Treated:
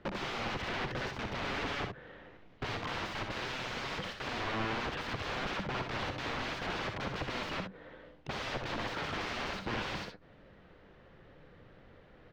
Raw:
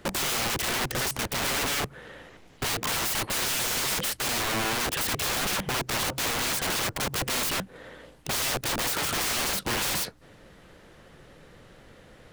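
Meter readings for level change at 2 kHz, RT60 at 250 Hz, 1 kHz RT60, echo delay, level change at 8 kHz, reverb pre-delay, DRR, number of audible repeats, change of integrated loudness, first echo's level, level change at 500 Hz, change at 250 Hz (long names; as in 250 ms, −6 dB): −7.5 dB, no reverb audible, no reverb audible, 63 ms, −25.5 dB, no reverb audible, no reverb audible, 1, −10.5 dB, −6.5 dB, −5.5 dB, −5.0 dB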